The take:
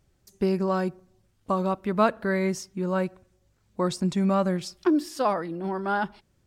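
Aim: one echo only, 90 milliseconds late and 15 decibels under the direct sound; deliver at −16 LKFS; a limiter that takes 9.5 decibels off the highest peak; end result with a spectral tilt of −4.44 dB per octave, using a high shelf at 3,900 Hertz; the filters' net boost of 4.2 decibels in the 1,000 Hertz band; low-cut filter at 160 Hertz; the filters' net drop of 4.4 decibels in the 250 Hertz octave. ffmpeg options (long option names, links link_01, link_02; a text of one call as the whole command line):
ffmpeg -i in.wav -af "highpass=160,equalizer=frequency=250:width_type=o:gain=-5.5,equalizer=frequency=1000:width_type=o:gain=5,highshelf=frequency=3900:gain=7.5,alimiter=limit=-16dB:level=0:latency=1,aecho=1:1:90:0.178,volume=12.5dB" out.wav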